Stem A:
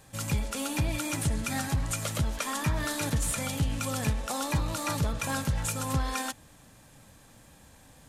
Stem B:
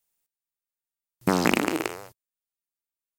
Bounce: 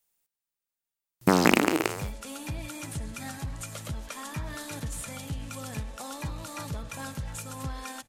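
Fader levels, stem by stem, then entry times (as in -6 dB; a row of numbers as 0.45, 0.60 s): -7.0, +1.5 dB; 1.70, 0.00 s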